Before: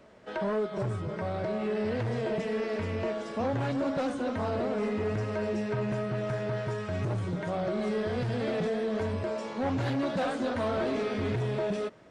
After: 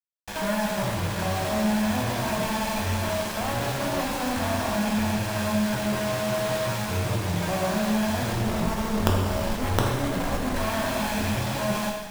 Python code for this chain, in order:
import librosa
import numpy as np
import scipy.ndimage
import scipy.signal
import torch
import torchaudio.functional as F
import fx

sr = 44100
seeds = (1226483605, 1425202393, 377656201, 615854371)

y = fx.lower_of_two(x, sr, delay_ms=1.2)
y = fx.hum_notches(y, sr, base_hz=60, count=9)
y = fx.tilt_eq(y, sr, slope=-4.0, at=(8.32, 10.56))
y = fx.quant_companded(y, sr, bits=2)
y = fx.rev_gated(y, sr, seeds[0], gate_ms=430, shape='falling', drr_db=-2.0)
y = y * 10.0 ** (-4.0 / 20.0)